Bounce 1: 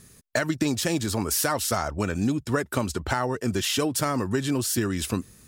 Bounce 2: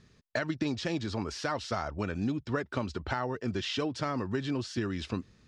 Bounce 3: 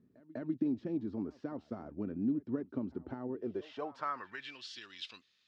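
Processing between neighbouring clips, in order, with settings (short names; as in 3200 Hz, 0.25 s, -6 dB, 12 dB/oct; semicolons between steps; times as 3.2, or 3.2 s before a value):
LPF 5000 Hz 24 dB/oct; gain -6.5 dB
pre-echo 0.198 s -20.5 dB; band-pass sweep 270 Hz -> 3400 Hz, 3.26–4.65; gain +1 dB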